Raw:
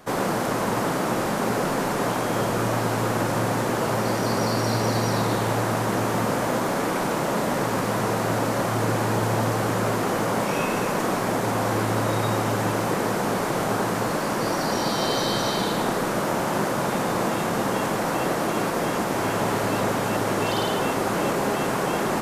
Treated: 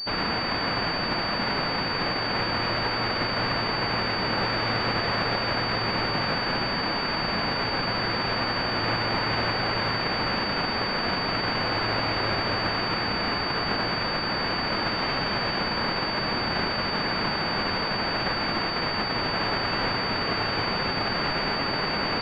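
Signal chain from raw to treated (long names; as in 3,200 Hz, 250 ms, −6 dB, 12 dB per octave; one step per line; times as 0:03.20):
spectral envelope flattened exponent 0.1
switching amplifier with a slow clock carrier 4,600 Hz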